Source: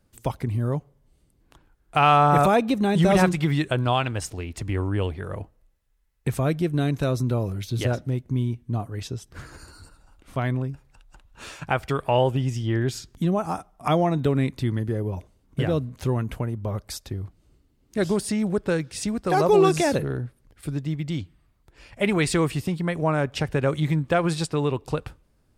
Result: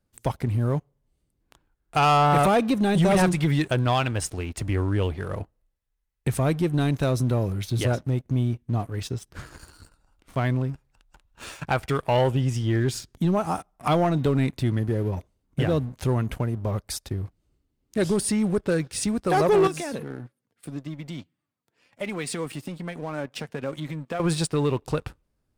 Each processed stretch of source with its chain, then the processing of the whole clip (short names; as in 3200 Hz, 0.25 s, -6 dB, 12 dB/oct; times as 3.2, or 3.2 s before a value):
19.67–24.2 HPF 120 Hz 24 dB/oct + compressor 2:1, threshold -28 dBFS + flange 1.7 Hz, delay 3.3 ms, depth 1.2 ms, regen +52%
whole clip: dynamic EQ 9400 Hz, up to +6 dB, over -57 dBFS, Q 4.5; sample leveller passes 2; gain -6 dB